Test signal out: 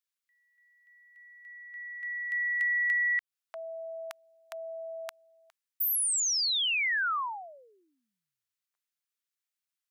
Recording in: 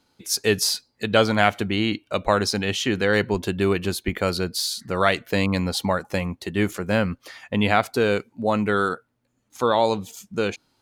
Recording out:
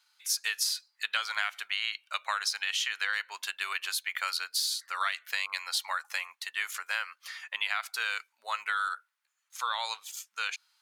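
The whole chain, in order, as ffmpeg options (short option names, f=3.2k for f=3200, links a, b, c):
-af "highpass=f=1.2k:w=0.5412,highpass=f=1.2k:w=1.3066,acompressor=threshold=-26dB:ratio=10"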